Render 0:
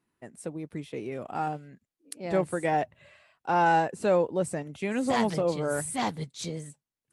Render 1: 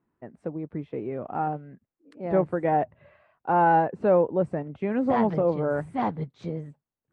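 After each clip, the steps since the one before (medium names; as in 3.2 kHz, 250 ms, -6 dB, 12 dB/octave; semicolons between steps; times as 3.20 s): low-pass 1.3 kHz 12 dB/octave; trim +3.5 dB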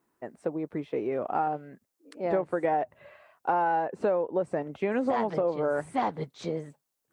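tone controls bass -12 dB, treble +9 dB; compression 10:1, threshold -28 dBFS, peak gain reduction 11.5 dB; trim +5 dB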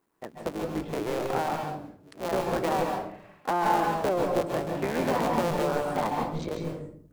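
cycle switcher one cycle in 3, muted; on a send at -1.5 dB: reverberation RT60 0.60 s, pre-delay 131 ms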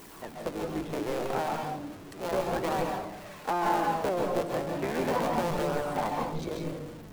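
jump at every zero crossing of -38.5 dBFS; flange 0.35 Hz, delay 0.3 ms, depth 4.5 ms, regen +75%; trim +1.5 dB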